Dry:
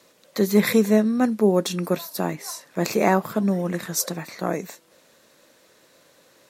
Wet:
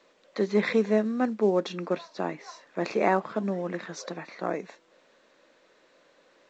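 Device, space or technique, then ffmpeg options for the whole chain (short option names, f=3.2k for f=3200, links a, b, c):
telephone: -af "highpass=250,lowpass=3.2k,volume=-3.5dB" -ar 16000 -c:a pcm_alaw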